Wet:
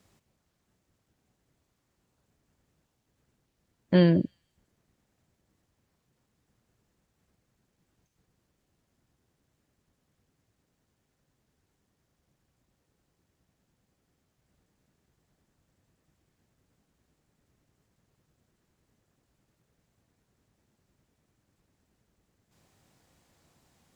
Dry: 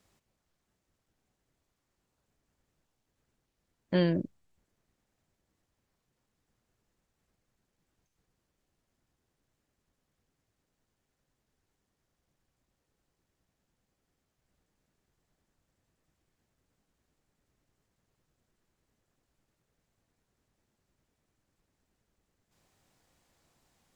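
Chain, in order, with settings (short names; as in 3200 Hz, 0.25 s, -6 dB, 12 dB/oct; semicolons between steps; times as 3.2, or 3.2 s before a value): HPF 130 Hz 6 dB/oct; low shelf 210 Hz +10 dB; thin delay 0.157 s, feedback 31%, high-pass 3100 Hz, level -22.5 dB; gain +3.5 dB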